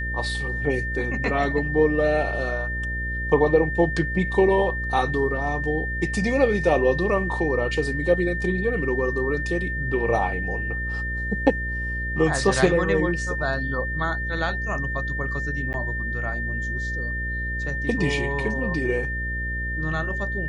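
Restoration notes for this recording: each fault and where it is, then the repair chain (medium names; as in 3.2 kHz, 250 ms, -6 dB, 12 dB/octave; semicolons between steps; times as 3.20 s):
buzz 60 Hz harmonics 10 -30 dBFS
whine 1.8 kHz -28 dBFS
15.73–15.74 s: dropout 9.8 ms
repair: de-hum 60 Hz, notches 10; band-stop 1.8 kHz, Q 30; interpolate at 15.73 s, 9.8 ms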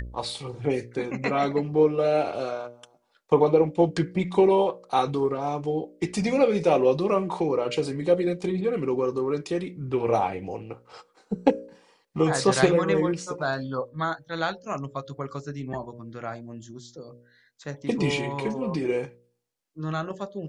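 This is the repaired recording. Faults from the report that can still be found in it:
nothing left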